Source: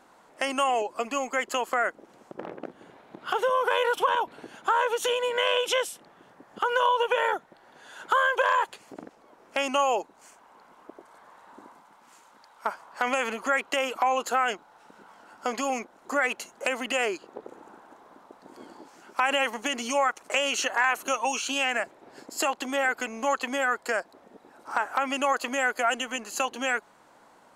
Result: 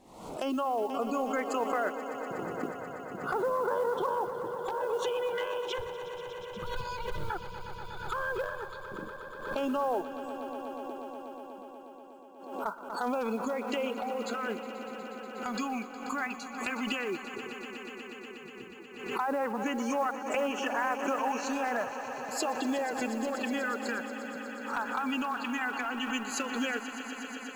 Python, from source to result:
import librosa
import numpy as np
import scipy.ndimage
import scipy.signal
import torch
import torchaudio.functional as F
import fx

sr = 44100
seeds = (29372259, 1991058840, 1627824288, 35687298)

p1 = fx.median_filter(x, sr, points=41, at=(5.78, 7.3))
p2 = fx.noise_reduce_blind(p1, sr, reduce_db=24)
p3 = fx.env_lowpass_down(p2, sr, base_hz=1300.0, full_db=-21.0)
p4 = fx.low_shelf(p3, sr, hz=230.0, db=11.5)
p5 = fx.over_compress(p4, sr, threshold_db=-28.0, ratio=-0.5)
p6 = p4 + (p5 * 10.0 ** (-2.5 / 20.0))
p7 = np.clip(10.0 ** (14.0 / 20.0) * p6, -1.0, 1.0) / 10.0 ** (14.0 / 20.0)
p8 = fx.filter_lfo_notch(p7, sr, shape='sine', hz=0.11, low_hz=490.0, high_hz=4100.0, q=0.92)
p9 = p8 + fx.echo_swell(p8, sr, ms=121, loudest=5, wet_db=-14.5, dry=0)
p10 = fx.mod_noise(p9, sr, seeds[0], snr_db=29)
p11 = fx.pre_swell(p10, sr, db_per_s=68.0)
y = p11 * 10.0 ** (-7.5 / 20.0)